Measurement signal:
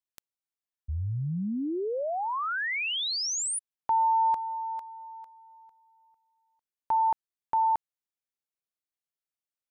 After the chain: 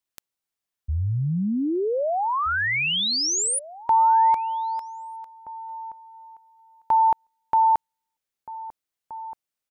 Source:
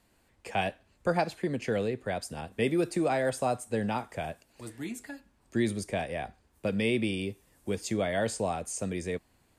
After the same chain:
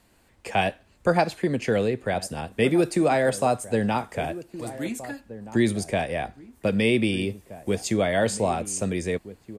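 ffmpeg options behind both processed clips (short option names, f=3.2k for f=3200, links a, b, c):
-filter_complex "[0:a]asplit=2[a][b];[b]adelay=1574,volume=-15dB,highshelf=f=4k:g=-35.4[c];[a][c]amix=inputs=2:normalize=0,volume=6.5dB"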